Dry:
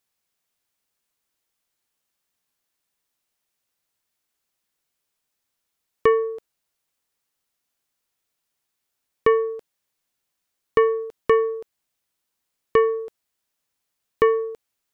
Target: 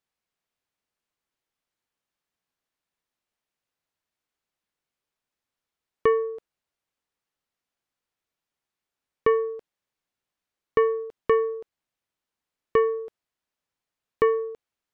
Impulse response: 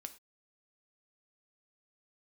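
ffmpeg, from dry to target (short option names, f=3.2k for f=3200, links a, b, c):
-af "lowpass=f=2.9k:p=1,volume=-3dB"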